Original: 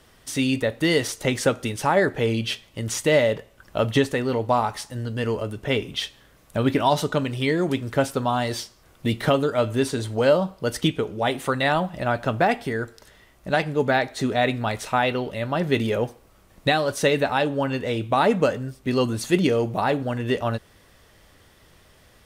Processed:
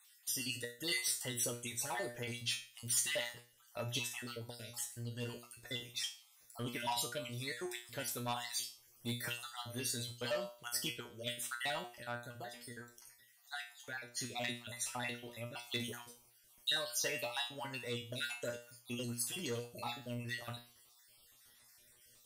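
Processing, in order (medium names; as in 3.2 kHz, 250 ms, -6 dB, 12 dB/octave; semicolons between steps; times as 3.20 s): random holes in the spectrogram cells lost 47%; 11.95–14.17 s: compression 2:1, threshold -32 dBFS, peak gain reduction 9 dB; feedback comb 120 Hz, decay 0.35 s, harmonics all, mix 90%; saturation -23.5 dBFS, distortion -18 dB; pre-emphasis filter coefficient 0.9; trim +10 dB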